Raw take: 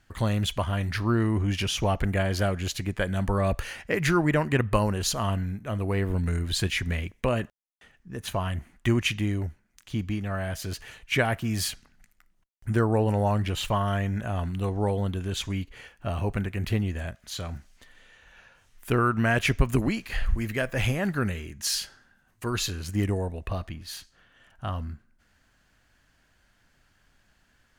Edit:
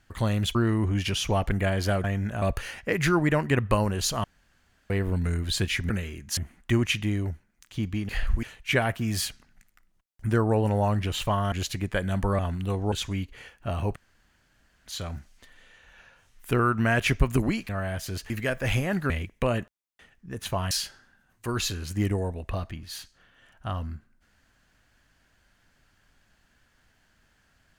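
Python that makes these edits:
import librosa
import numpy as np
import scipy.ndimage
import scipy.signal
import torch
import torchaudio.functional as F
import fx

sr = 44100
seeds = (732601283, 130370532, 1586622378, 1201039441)

y = fx.edit(x, sr, fx.cut(start_s=0.55, length_s=0.53),
    fx.swap(start_s=2.57, length_s=0.87, other_s=13.95, other_length_s=0.38),
    fx.room_tone_fill(start_s=5.26, length_s=0.66),
    fx.swap(start_s=6.92, length_s=1.61, other_s=21.22, other_length_s=0.47),
    fx.swap(start_s=10.25, length_s=0.61, other_s=20.08, other_length_s=0.34),
    fx.cut(start_s=14.86, length_s=0.45),
    fx.room_tone_fill(start_s=16.35, length_s=0.9), tone=tone)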